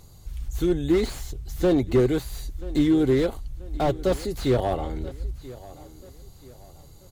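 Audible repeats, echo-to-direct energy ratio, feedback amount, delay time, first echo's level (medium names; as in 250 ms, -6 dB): 2, -18.5 dB, 39%, 983 ms, -19.0 dB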